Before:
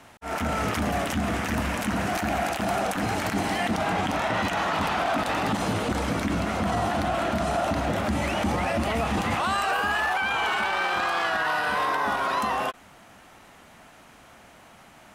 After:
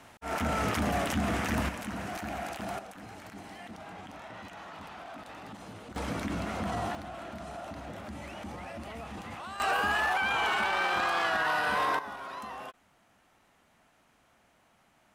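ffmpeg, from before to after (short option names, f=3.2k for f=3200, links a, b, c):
-af "asetnsamples=n=441:p=0,asendcmd='1.69 volume volume -10.5dB;2.79 volume volume -19.5dB;5.96 volume volume -7.5dB;6.95 volume volume -16dB;9.6 volume volume -3dB;11.99 volume volume -15dB',volume=-3dB"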